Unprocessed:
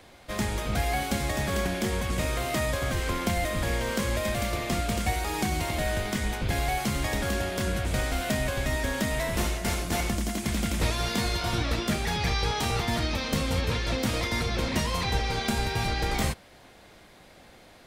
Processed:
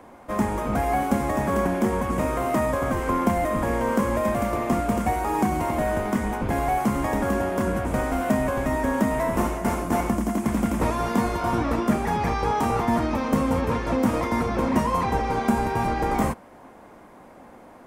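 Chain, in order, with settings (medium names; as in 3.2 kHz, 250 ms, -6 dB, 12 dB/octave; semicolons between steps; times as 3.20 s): graphic EQ 250/500/1000/4000 Hz +11/+4/+12/-12 dB; trim -2 dB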